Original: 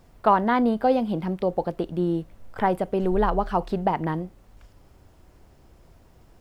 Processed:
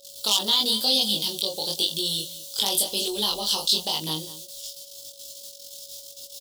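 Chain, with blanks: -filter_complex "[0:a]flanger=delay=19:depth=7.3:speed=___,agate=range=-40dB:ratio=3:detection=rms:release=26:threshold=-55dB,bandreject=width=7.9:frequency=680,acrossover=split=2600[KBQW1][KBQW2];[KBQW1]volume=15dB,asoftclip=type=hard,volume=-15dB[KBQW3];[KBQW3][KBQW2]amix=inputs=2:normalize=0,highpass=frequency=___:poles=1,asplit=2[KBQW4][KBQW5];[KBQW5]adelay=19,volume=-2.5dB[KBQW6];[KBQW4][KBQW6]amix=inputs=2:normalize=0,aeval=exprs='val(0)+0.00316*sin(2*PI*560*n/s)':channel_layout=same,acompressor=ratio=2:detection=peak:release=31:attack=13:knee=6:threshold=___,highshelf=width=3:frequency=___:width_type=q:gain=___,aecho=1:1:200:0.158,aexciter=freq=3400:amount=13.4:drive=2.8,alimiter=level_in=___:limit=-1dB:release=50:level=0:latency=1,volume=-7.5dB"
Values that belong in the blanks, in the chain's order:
0.97, 290, -30dB, 2400, 12.5, 4.5dB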